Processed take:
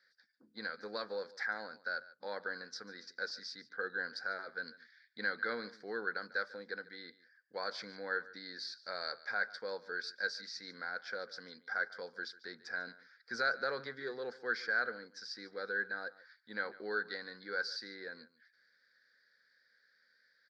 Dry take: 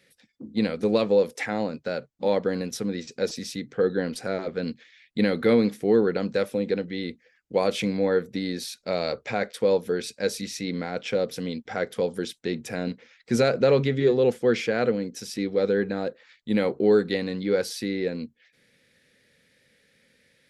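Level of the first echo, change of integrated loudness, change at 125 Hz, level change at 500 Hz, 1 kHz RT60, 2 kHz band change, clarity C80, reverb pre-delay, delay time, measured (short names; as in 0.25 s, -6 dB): -19.0 dB, -14.0 dB, -30.0 dB, -20.5 dB, none, -1.0 dB, none, none, 0.145 s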